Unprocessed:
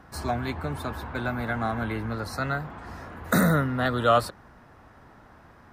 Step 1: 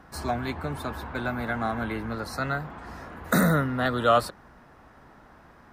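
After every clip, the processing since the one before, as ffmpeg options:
-af "equalizer=f=100:t=o:w=0.38:g=-8.5"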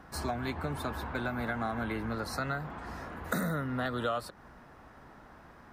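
-af "acompressor=threshold=-29dB:ratio=5,volume=-1dB"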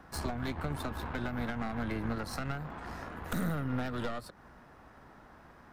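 -filter_complex "[0:a]aeval=exprs='0.15*sin(PI/2*1.58*val(0)/0.15)':c=same,aeval=exprs='0.158*(cos(1*acos(clip(val(0)/0.158,-1,1)))-cos(1*PI/2))+0.0631*(cos(2*acos(clip(val(0)/0.158,-1,1)))-cos(2*PI/2))+0.00708*(cos(7*acos(clip(val(0)/0.158,-1,1)))-cos(7*PI/2))':c=same,acrossover=split=290[a][b];[b]acompressor=threshold=-30dB:ratio=5[c];[a][c]amix=inputs=2:normalize=0,volume=-6.5dB"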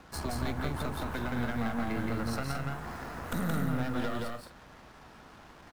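-filter_complex "[0:a]acrusher=bits=8:mix=0:aa=0.5,asplit=2[a][b];[b]aecho=0:1:172|215.7:0.794|0.316[c];[a][c]amix=inputs=2:normalize=0"

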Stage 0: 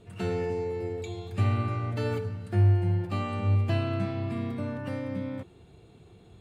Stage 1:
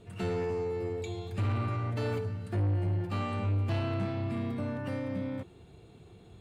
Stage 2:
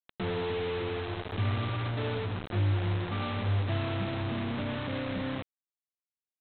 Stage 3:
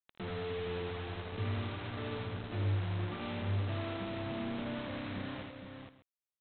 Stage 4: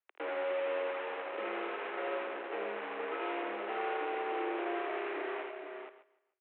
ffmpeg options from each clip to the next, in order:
-af "asoftclip=type=tanh:threshold=-25.5dB"
-af "aemphasis=mode=reproduction:type=75kf,aresample=8000,acrusher=bits=5:mix=0:aa=0.000001,aresample=44100"
-af "aecho=1:1:56|81|392|466|598:0.2|0.631|0.126|0.473|0.112,volume=-8dB"
-af "highpass=f=260:t=q:w=0.5412,highpass=f=260:t=q:w=1.307,lowpass=f=2.6k:t=q:w=0.5176,lowpass=f=2.6k:t=q:w=0.7071,lowpass=f=2.6k:t=q:w=1.932,afreqshift=110,aecho=1:1:148|296|444:0.0841|0.0387|0.0178,volume=5.5dB"

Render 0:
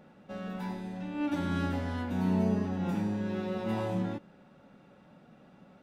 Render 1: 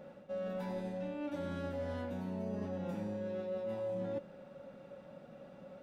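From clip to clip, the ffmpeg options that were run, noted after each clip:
-af "equalizer=f=550:w=6:g=14.5,areverse,acompressor=threshold=-36dB:ratio=10,areverse"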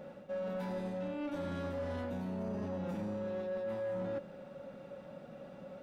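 -af "asoftclip=type=tanh:threshold=-36dB,volume=3.5dB"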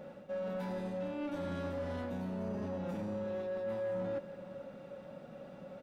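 -af "aecho=1:1:450:0.168"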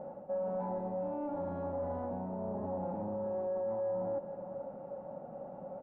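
-af "alimiter=level_in=11dB:limit=-24dB:level=0:latency=1:release=53,volume=-11dB,lowpass=f=820:t=q:w=3.4"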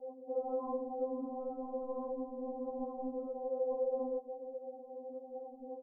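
-af "afftfilt=real='hypot(re,im)*cos(2*PI*random(0))':imag='hypot(re,im)*sin(2*PI*random(1))':win_size=512:overlap=0.75,afftdn=nr=30:nf=-52,afftfilt=real='re*3.46*eq(mod(b,12),0)':imag='im*3.46*eq(mod(b,12),0)':win_size=2048:overlap=0.75,volume=6dB"

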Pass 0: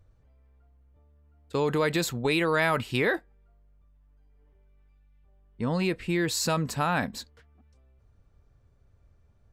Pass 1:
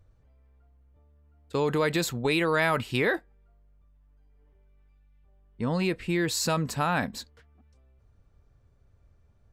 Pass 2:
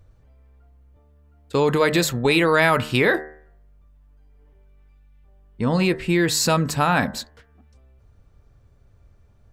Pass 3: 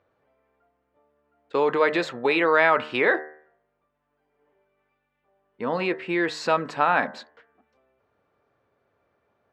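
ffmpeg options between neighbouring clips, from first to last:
-af anull
-af "bandreject=f=76.12:t=h:w=4,bandreject=f=152.24:t=h:w=4,bandreject=f=228.36:t=h:w=4,bandreject=f=304.48:t=h:w=4,bandreject=f=380.6:t=h:w=4,bandreject=f=456.72:t=h:w=4,bandreject=f=532.84:t=h:w=4,bandreject=f=608.96:t=h:w=4,bandreject=f=685.08:t=h:w=4,bandreject=f=761.2:t=h:w=4,bandreject=f=837.32:t=h:w=4,bandreject=f=913.44:t=h:w=4,bandreject=f=989.56:t=h:w=4,bandreject=f=1.06568k:t=h:w=4,bandreject=f=1.1418k:t=h:w=4,bandreject=f=1.21792k:t=h:w=4,bandreject=f=1.29404k:t=h:w=4,bandreject=f=1.37016k:t=h:w=4,bandreject=f=1.44628k:t=h:w=4,bandreject=f=1.5224k:t=h:w=4,bandreject=f=1.59852k:t=h:w=4,bandreject=f=1.67464k:t=h:w=4,bandreject=f=1.75076k:t=h:w=4,bandreject=f=1.82688k:t=h:w=4,bandreject=f=1.903k:t=h:w=4,bandreject=f=1.97912k:t=h:w=4,bandreject=f=2.05524k:t=h:w=4,volume=7.5dB"
-af "highpass=410,lowpass=2.4k"

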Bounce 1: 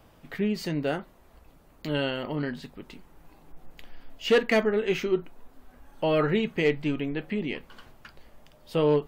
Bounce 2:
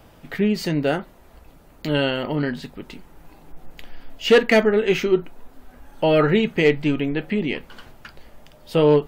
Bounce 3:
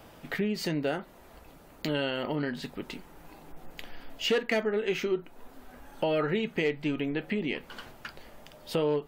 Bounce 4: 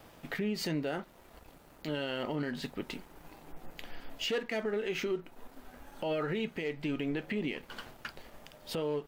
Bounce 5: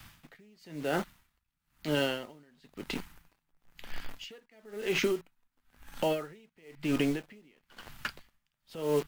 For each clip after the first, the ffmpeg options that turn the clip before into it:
-af "bandreject=f=1.1k:w=17,volume=7dB"
-af "lowshelf=f=130:g=-8.5,acompressor=threshold=-30dB:ratio=2.5"
-af "alimiter=level_in=1dB:limit=-24dB:level=0:latency=1:release=86,volume=-1dB,aeval=exprs='sgn(val(0))*max(abs(val(0))-0.00119,0)':c=same"
-filter_complex "[0:a]acrossover=split=210|1100|3600[a][b][c][d];[b]acrusher=bits=7:mix=0:aa=0.000001[e];[a][e][c][d]amix=inputs=4:normalize=0,aeval=exprs='val(0)*pow(10,-34*(0.5-0.5*cos(2*PI*1*n/s))/20)':c=same,volume=7.5dB"

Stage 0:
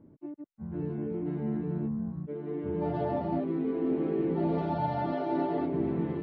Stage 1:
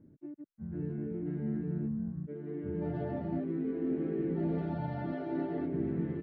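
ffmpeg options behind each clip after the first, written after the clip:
-af "firequalizer=gain_entry='entry(160,0);entry(1000,-13);entry(1600,0);entry(2400,-6);entry(3600,-9)':delay=0.05:min_phase=1,volume=-1.5dB"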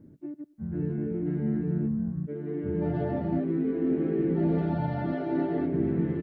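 -af "aecho=1:1:97|194|291:0.0631|0.0341|0.0184,volume=6.5dB"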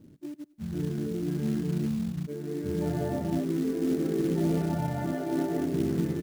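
-af "acrusher=bits=5:mode=log:mix=0:aa=0.000001,volume=-1dB"

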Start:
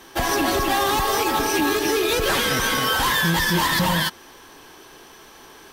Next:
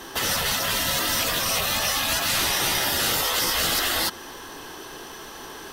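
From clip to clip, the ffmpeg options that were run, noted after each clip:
-filter_complex "[0:a]bandreject=f=2.3k:w=10,afftfilt=real='re*lt(hypot(re,im),0.158)':imag='im*lt(hypot(re,im),0.158)':win_size=1024:overlap=0.75,asplit=2[a][b];[b]alimiter=limit=-24dB:level=0:latency=1:release=53,volume=1dB[c];[a][c]amix=inputs=2:normalize=0"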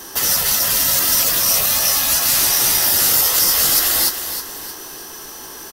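-af "aexciter=amount=4.1:drive=1.7:freq=4.8k,aecho=1:1:314|628|942|1256:0.335|0.134|0.0536|0.0214"

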